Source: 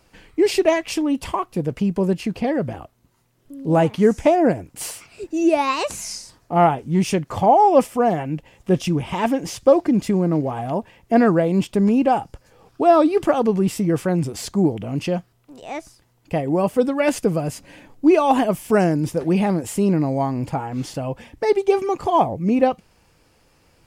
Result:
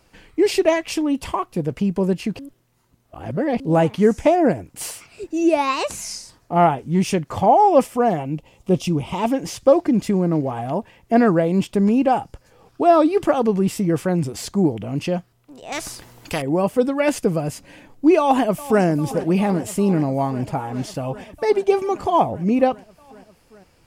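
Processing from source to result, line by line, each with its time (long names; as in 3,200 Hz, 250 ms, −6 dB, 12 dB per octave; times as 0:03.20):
0:02.39–0:03.60: reverse
0:08.17–0:09.31: parametric band 1,700 Hz −12.5 dB 0.42 octaves
0:15.72–0:16.42: every bin compressed towards the loudest bin 2 to 1
0:18.18–0:18.83: delay throw 400 ms, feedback 85%, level −16 dB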